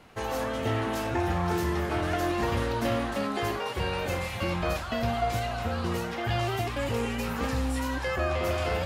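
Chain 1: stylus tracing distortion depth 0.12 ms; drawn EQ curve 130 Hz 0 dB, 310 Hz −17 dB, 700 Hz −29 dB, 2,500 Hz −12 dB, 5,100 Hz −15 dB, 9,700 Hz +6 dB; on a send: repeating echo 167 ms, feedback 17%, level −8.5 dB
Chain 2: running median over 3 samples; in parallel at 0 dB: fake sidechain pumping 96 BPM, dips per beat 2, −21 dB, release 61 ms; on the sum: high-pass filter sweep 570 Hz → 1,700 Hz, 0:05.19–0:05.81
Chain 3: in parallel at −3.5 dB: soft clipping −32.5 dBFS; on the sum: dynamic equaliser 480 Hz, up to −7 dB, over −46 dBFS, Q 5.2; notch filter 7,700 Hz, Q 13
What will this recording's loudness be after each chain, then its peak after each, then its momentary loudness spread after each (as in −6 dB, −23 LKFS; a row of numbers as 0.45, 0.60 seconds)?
−35.0, −22.5, −27.5 LKFS; −18.5, −6.0, −16.0 dBFS; 5, 7, 3 LU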